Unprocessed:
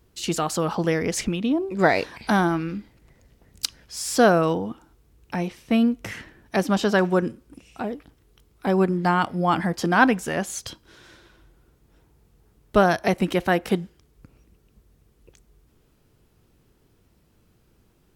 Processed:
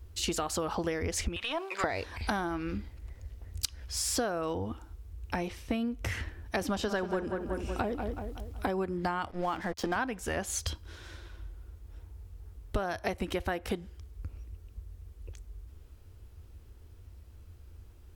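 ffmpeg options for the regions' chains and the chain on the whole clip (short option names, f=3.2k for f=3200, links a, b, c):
-filter_complex "[0:a]asettb=1/sr,asplit=3[a][b][c];[a]atrim=end=1.364[d];[b]atrim=start=1.36:end=1.84,asetpts=PTS-STARTPTS,afade=t=in:d=0.004:c=qsin,afade=t=out:st=0.476:d=0.004:c=qsin,highpass=1.3k,acompressor=threshold=-37dB:ratio=4:attack=3.2:release=140:knee=1:detection=peak,asplit=2[e][f];[f]highpass=f=720:p=1,volume=22dB,asoftclip=type=tanh:threshold=-14.5dB[g];[e][g]amix=inputs=2:normalize=0,lowpass=f=2.4k:p=1,volume=-6dB[h];[c]atrim=start=1.836[i];[d][h]acrossfade=d=0.004:c1=hsin:c2=qsin[j];[j][i]acrossfade=d=0.004:c1=qsin:c2=hsin,asettb=1/sr,asplit=3[k][l][m];[k]atrim=end=6.614[n];[l]atrim=start=6.61:end=8.67,asetpts=PTS-STARTPTS,afade=t=in:d=0.004:c=qsin,afade=t=out:st=2.056:d=0.004:c=qsin,asplit=2[o][p];[p]adelay=186,lowpass=f=2.5k:p=1,volume=-9.5dB,asplit=2[q][r];[r]adelay=186,lowpass=f=2.5k:p=1,volume=0.47,asplit=2[s][t];[t]adelay=186,lowpass=f=2.5k:p=1,volume=0.47,asplit=2[u][v];[v]adelay=186,lowpass=f=2.5k:p=1,volume=0.47,asplit=2[w][x];[x]adelay=186,lowpass=f=2.5k:p=1,volume=0.47[y];[o][q][s][u][w][y]amix=inputs=6:normalize=0,atrim=end_sample=90846,acontrast=35[z];[m]atrim=start=8.666[aa];[n][z]acrossfade=d=0.004:c1=hsin:c2=qsin[ab];[ab][aa]acrossfade=d=0.004:c1=qsin:c2=hsin,asettb=1/sr,asplit=3[ac][ad][ae];[ac]atrim=end=9.314[af];[ad]atrim=start=9.31:end=9.96,asetpts=PTS-STARTPTS,afade=t=in:d=0.004:c=qsin,afade=t=out:st=0.646:d=0.004:c=qsin,highpass=160,lowpass=6.4k,aeval=exprs='sgn(val(0))*max(abs(val(0))-0.0119,0)':c=same[ag];[ae]atrim=start=9.956[ah];[af][ag]acrossfade=d=0.004:c1=hsin:c2=qsin[ai];[ai][ah]acrossfade=d=0.004:c1=qsin:c2=hsin,lowshelf=f=110:t=q:w=3:g=10.5,acompressor=threshold=-28dB:ratio=12"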